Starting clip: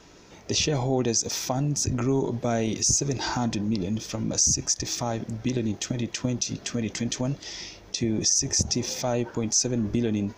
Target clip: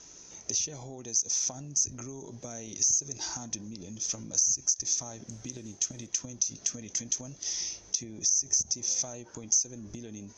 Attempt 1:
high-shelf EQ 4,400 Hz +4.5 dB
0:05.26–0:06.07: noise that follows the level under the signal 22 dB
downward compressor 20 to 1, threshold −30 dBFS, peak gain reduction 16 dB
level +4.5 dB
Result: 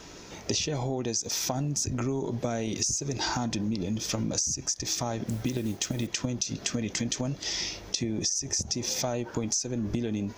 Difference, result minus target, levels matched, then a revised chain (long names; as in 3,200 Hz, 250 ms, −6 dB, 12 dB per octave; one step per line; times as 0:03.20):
8,000 Hz band −3.5 dB
high-shelf EQ 4,400 Hz +4.5 dB
0:05.26–0:06.07: noise that follows the level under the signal 22 dB
downward compressor 20 to 1, threshold −30 dBFS, peak gain reduction 16 dB
transistor ladder low-pass 6,500 Hz, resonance 85%
level +4.5 dB